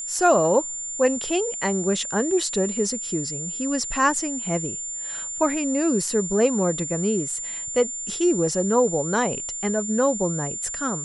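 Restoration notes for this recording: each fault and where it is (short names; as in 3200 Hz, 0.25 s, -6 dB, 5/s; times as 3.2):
tone 7200 Hz -29 dBFS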